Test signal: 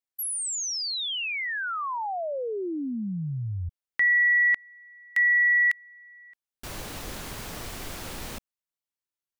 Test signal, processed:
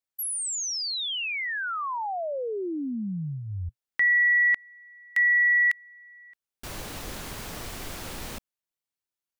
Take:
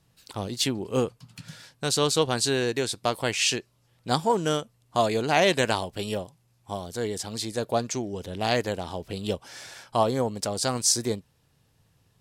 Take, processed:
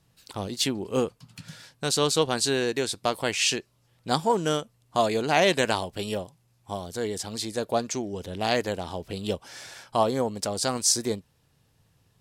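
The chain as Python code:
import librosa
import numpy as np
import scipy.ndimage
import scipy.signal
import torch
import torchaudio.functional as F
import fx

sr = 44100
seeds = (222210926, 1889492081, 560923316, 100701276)

y = fx.dynamic_eq(x, sr, hz=120.0, q=5.2, threshold_db=-48.0, ratio=4.0, max_db=-6)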